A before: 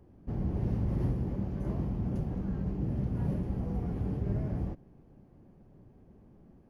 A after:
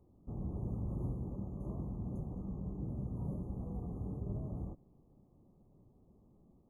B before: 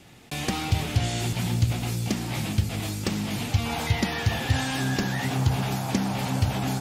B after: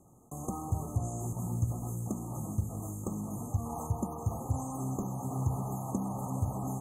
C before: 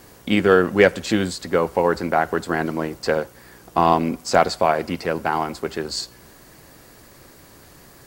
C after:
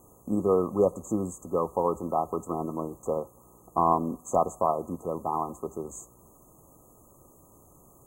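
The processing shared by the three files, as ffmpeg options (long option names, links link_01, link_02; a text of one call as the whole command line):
ffmpeg -i in.wav -af "afftfilt=real='re*(1-between(b*sr/4096,1300,6200))':imag='im*(1-between(b*sr/4096,1300,6200))':win_size=4096:overlap=0.75,adynamicequalizer=threshold=0.0126:dfrequency=1100:dqfactor=2.8:tfrequency=1100:tqfactor=2.8:attack=5:release=100:ratio=0.375:range=2:mode=boostabove:tftype=bell,volume=-8dB" out.wav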